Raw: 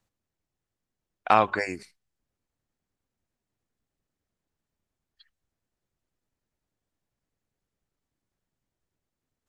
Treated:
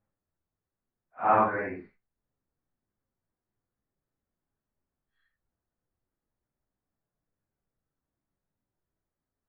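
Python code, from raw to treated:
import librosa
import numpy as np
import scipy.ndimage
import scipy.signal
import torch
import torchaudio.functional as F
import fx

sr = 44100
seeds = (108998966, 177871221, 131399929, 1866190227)

y = fx.phase_scramble(x, sr, seeds[0], window_ms=200)
y = scipy.signal.sosfilt(scipy.signal.butter(4, 1800.0, 'lowpass', fs=sr, output='sos'), y)
y = y * 10.0 ** (-1.5 / 20.0)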